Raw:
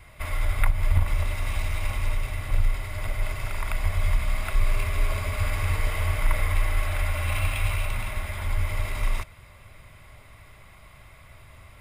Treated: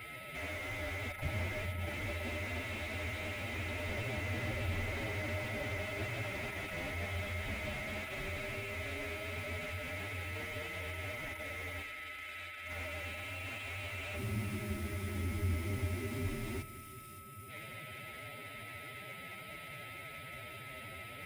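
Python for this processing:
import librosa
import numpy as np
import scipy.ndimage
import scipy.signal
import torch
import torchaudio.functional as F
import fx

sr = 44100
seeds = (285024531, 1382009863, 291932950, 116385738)

y = fx.spec_box(x, sr, start_s=7.86, length_s=1.86, low_hz=430.0, high_hz=5000.0, gain_db=-14)
y = scipy.signal.sosfilt(scipy.signal.butter(2, 200.0, 'highpass', fs=sr, output='sos'), y)
y = fx.spec_box(y, sr, start_s=6.58, length_s=0.46, low_hz=1200.0, high_hz=8600.0, gain_db=9)
y = fx.over_compress(y, sr, threshold_db=-40.0, ratio=-1.0)
y = fx.stretch_vocoder(y, sr, factor=1.8)
y = y + 10.0 ** (-44.0 / 20.0) * np.sin(2.0 * np.pi * 1300.0 * np.arange(len(y)) / sr)
y = fx.fixed_phaser(y, sr, hz=2700.0, stages=4)
y = fx.echo_split(y, sr, split_hz=2400.0, low_ms=200, high_ms=572, feedback_pct=52, wet_db=-14.5)
y = fx.slew_limit(y, sr, full_power_hz=12.0)
y = F.gain(torch.from_numpy(y), 4.5).numpy()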